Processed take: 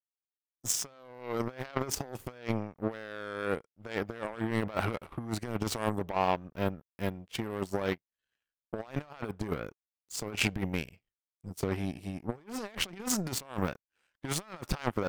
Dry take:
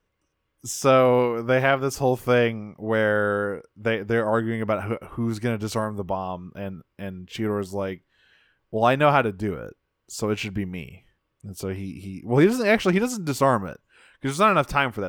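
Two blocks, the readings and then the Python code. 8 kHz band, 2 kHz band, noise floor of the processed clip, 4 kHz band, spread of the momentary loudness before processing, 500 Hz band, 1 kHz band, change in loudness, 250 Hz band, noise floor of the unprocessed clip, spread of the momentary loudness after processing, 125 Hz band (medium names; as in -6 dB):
-0.5 dB, -12.0 dB, under -85 dBFS, -4.5 dB, 17 LU, -14.0 dB, -12.5 dB, -11.5 dB, -10.0 dB, -76 dBFS, 10 LU, -9.0 dB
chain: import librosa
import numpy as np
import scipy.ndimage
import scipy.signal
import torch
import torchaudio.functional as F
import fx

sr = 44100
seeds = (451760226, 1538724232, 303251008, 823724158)

y = fx.over_compress(x, sr, threshold_db=-29.0, ratio=-1.0)
y = fx.power_curve(y, sr, exponent=2.0)
y = F.gain(torch.from_numpy(y), 3.0).numpy()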